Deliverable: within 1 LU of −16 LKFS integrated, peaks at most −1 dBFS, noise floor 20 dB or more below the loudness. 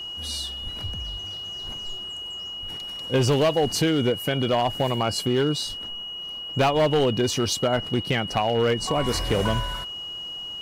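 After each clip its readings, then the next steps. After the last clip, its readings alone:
share of clipped samples 1.6%; peaks flattened at −15.5 dBFS; interfering tone 2,900 Hz; level of the tone −32 dBFS; integrated loudness −25.0 LKFS; sample peak −15.5 dBFS; target loudness −16.0 LKFS
→ clipped peaks rebuilt −15.5 dBFS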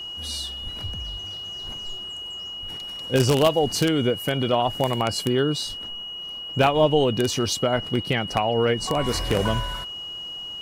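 share of clipped samples 0.0%; interfering tone 2,900 Hz; level of the tone −32 dBFS
→ notch filter 2,900 Hz, Q 30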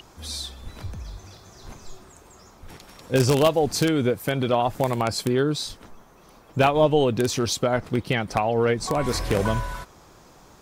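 interfering tone none found; integrated loudness −23.0 LKFS; sample peak −6.0 dBFS; target loudness −16.0 LKFS
→ level +7 dB
brickwall limiter −1 dBFS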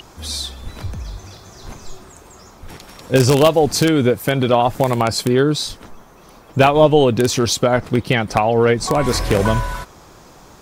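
integrated loudness −16.5 LKFS; sample peak −1.0 dBFS; background noise floor −45 dBFS

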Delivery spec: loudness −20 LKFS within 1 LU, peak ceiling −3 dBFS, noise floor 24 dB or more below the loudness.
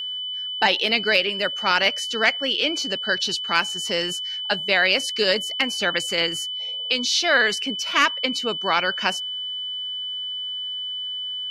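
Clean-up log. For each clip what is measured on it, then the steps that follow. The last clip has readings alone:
crackle rate 39 per second; interfering tone 3,000 Hz; level of the tone −27 dBFS; integrated loudness −21.5 LKFS; sample peak −6.0 dBFS; target loudness −20.0 LKFS
→ click removal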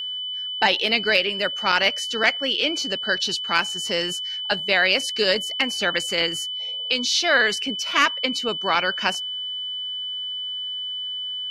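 crackle rate 0.35 per second; interfering tone 3,000 Hz; level of the tone −27 dBFS
→ notch filter 3,000 Hz, Q 30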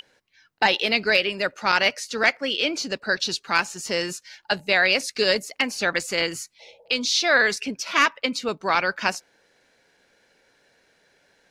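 interfering tone none found; integrated loudness −22.5 LKFS; sample peak −6.5 dBFS; target loudness −20.0 LKFS
→ level +2.5 dB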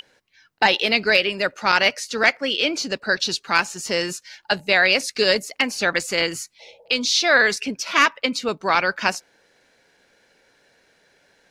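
integrated loudness −20.0 LKFS; sample peak −4.0 dBFS; background noise floor −62 dBFS

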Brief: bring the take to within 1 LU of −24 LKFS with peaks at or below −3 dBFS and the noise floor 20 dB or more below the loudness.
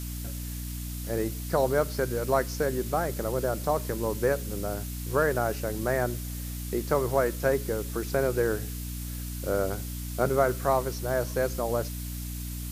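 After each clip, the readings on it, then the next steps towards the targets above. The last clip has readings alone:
mains hum 60 Hz; hum harmonics up to 300 Hz; level of the hum −33 dBFS; background noise floor −35 dBFS; target noise floor −49 dBFS; integrated loudness −29.0 LKFS; sample peak −9.5 dBFS; target loudness −24.0 LKFS
→ mains-hum notches 60/120/180/240/300 Hz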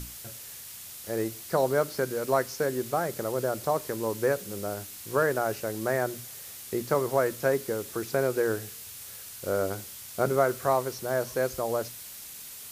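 mains hum none found; background noise floor −43 dBFS; target noise floor −49 dBFS
→ broadband denoise 6 dB, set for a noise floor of −43 dBFS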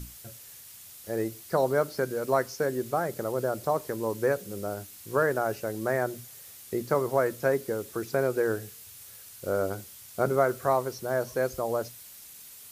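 background noise floor −48 dBFS; target noise floor −49 dBFS
→ broadband denoise 6 dB, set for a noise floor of −48 dBFS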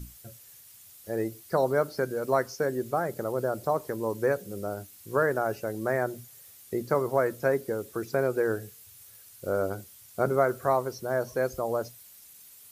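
background noise floor −52 dBFS; integrated loudness −29.0 LKFS; sample peak −10.5 dBFS; target loudness −24.0 LKFS
→ level +5 dB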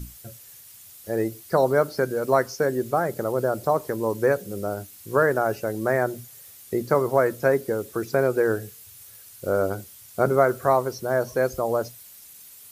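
integrated loudness −24.0 LKFS; sample peak −5.5 dBFS; background noise floor −47 dBFS

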